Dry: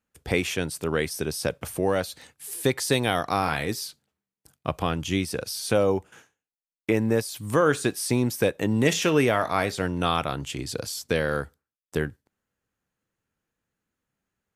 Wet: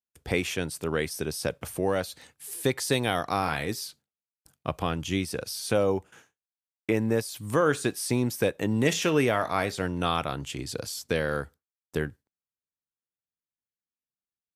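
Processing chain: gate with hold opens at -45 dBFS; trim -2.5 dB

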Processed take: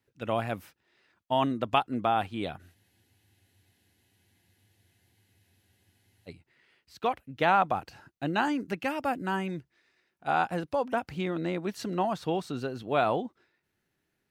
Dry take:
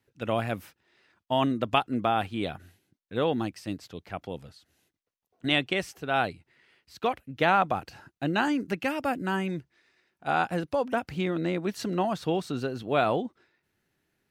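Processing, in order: dynamic bell 900 Hz, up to +4 dB, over -39 dBFS, Q 1.6; spectral freeze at 2.77 s, 3.50 s; trim -3 dB

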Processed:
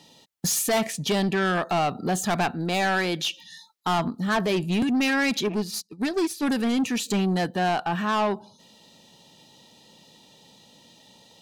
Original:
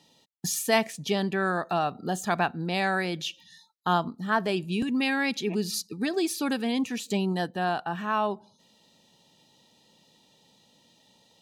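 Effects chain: 2.54–3.99 s: bass shelf 150 Hz -10 dB; saturation -27 dBFS, distortion -9 dB; 5.48–6.43 s: upward expansion 2.5:1, over -43 dBFS; trim +8 dB

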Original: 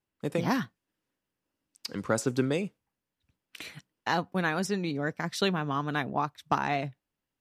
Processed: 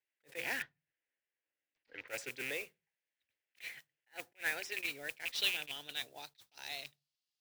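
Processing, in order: rattle on loud lows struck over -31 dBFS, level -26 dBFS; peaking EQ 160 Hz +4 dB 1.2 oct; static phaser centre 470 Hz, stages 4; in parallel at -2 dB: peak limiter -27.5 dBFS, peak gain reduction 10.5 dB; on the sum: band-pass sweep 1.9 kHz -> 4.5 kHz, 4.28–6.58 s; modulation noise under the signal 11 dB; 0.62–2.08 s: distance through air 260 m; on a send at -23.5 dB: reverberation RT60 0.30 s, pre-delay 3 ms; on the sum: attacks held to a fixed rise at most 350 dB/s; trim +2 dB

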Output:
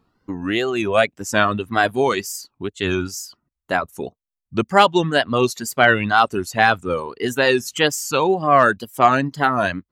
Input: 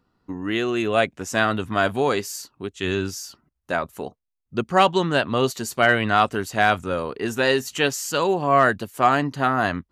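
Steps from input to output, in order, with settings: wow and flutter 110 cents; reverb removal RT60 1.2 s; trim +4 dB

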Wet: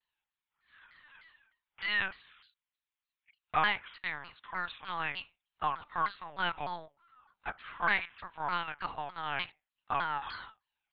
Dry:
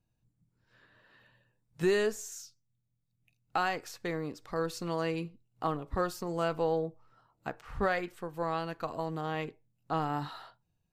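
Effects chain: Bessel high-pass 1.3 kHz, order 6; LPC vocoder at 8 kHz pitch kept; vibrato with a chosen wave saw down 3.3 Hz, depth 250 cents; trim +7.5 dB

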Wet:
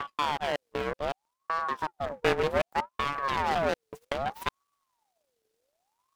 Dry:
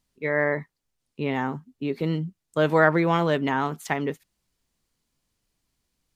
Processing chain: slices played last to first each 187 ms, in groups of 4; in parallel at +1 dB: compression, threshold -27 dBFS, peak gain reduction 14 dB; on the sum: full-wave rectifier; ring modulator with a swept carrier 790 Hz, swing 45%, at 0.64 Hz; trim -5.5 dB

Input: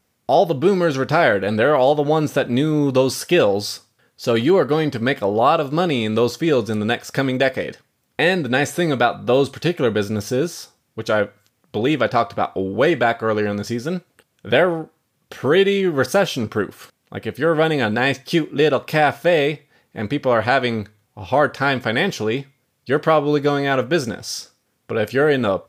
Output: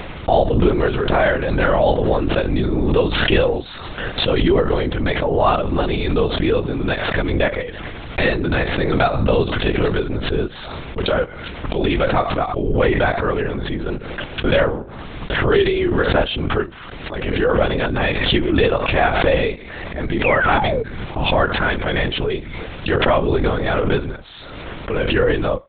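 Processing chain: painted sound fall, 20.24–20.83 s, 430–2700 Hz -20 dBFS; LPC vocoder at 8 kHz whisper; swell ahead of each attack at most 33 dB/s; trim -1 dB

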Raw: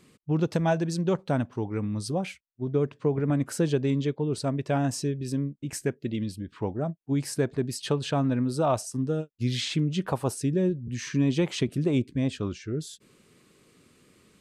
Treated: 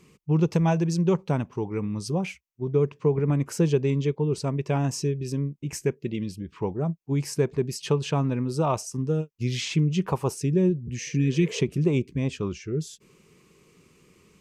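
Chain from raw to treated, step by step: bass shelf 140 Hz +4 dB; spectral replace 11.01–11.58 s, 420–1800 Hz both; rippled EQ curve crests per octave 0.77, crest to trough 7 dB

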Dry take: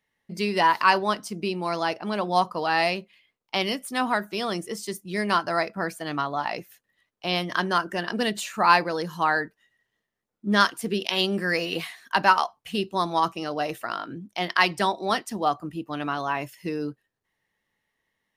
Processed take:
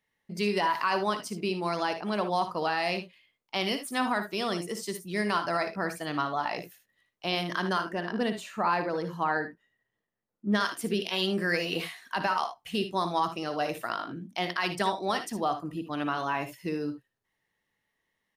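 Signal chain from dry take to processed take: 7.88–10.55 s: treble shelf 2.4 kHz -11.5 dB; peak limiter -14.5 dBFS, peak gain reduction 11 dB; early reflections 58 ms -11 dB, 75 ms -13 dB; trim -2.5 dB

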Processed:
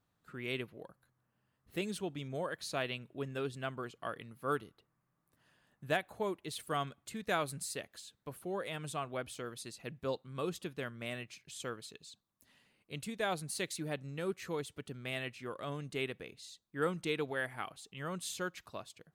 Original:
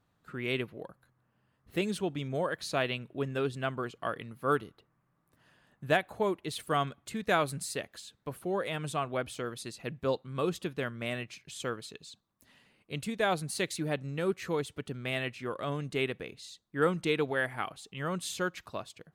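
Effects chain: treble shelf 4.4 kHz +5 dB; trim -6.5 dB

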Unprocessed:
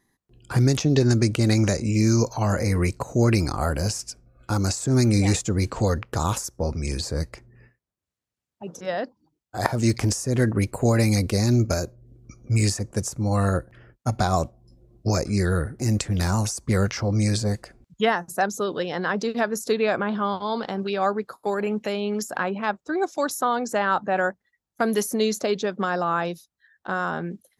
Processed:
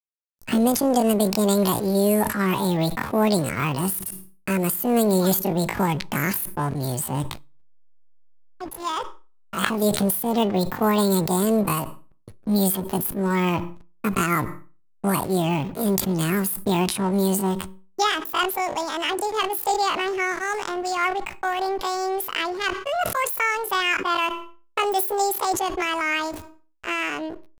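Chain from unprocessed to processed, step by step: treble shelf 3.9 kHz +6.5 dB; in parallel at -2 dB: compression 12:1, threshold -32 dBFS, peak gain reduction 18 dB; on the sum: hysteresis with a dead band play -29 dBFS; pitch shift +10.5 st; on a send at -24 dB: reverberation RT60 0.50 s, pre-delay 3 ms; on the sum: decay stretcher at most 83 dB/s; trim -1.5 dB

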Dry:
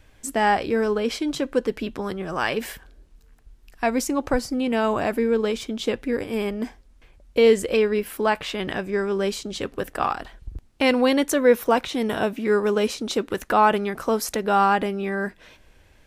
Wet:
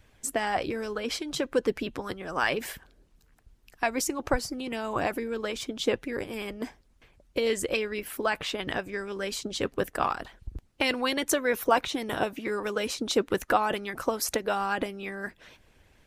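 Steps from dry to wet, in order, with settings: harmonic-percussive split harmonic -12 dB

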